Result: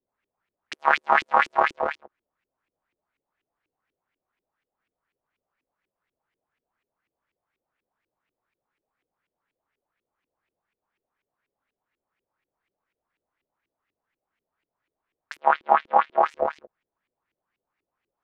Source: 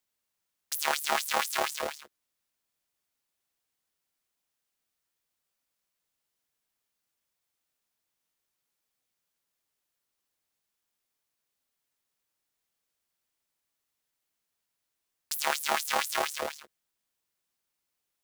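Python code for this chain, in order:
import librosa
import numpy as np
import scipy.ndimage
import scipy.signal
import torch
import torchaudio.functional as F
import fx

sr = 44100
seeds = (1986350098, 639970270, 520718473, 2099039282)

y = fx.cheby1_bandpass(x, sr, low_hz=170.0, high_hz=3600.0, order=3, at=(15.39, 16.21), fade=0.02)
y = fx.filter_lfo_lowpass(y, sr, shape='saw_up', hz=4.1, low_hz=330.0, high_hz=2600.0, q=3.3)
y = y * 10.0 ** (4.5 / 20.0)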